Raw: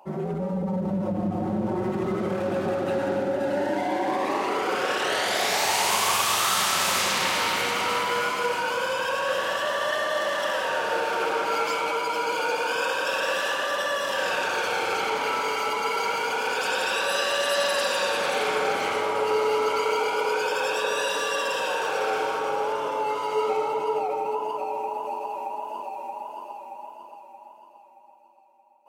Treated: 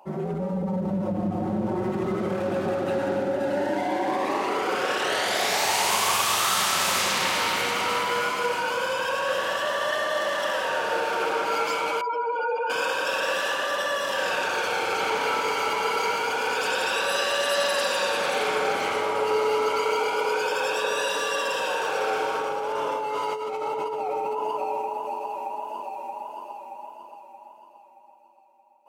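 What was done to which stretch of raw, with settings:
0:12.01–0:12.70: expanding power law on the bin magnitudes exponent 2.2
0:14.43–0:15.57: delay throw 570 ms, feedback 60%, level −7 dB
0:22.35–0:24.82: compressor whose output falls as the input rises −28 dBFS

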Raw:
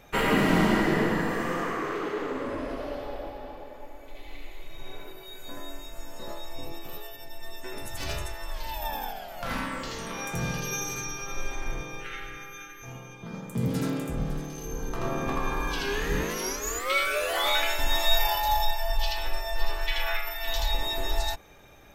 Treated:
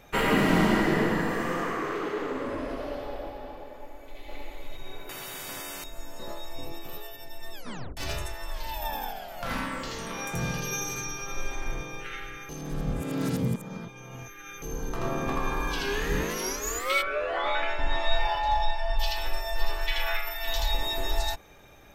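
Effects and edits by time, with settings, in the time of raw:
0:03.71–0:04.19: delay throw 570 ms, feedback 20%, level −0.5 dB
0:05.09–0:05.84: every bin compressed towards the loudest bin 4 to 1
0:07.53: tape stop 0.44 s
0:12.49–0:14.62: reverse
0:17.01–0:18.98: low-pass filter 1,600 Hz → 3,800 Hz

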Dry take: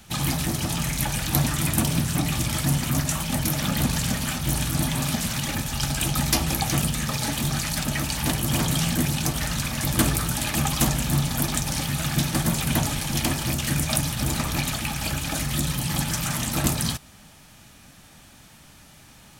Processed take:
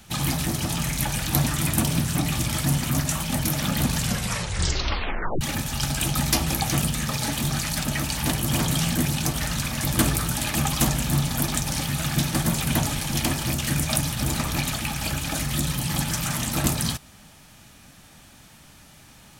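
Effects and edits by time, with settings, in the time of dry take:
0:04.01: tape stop 1.40 s

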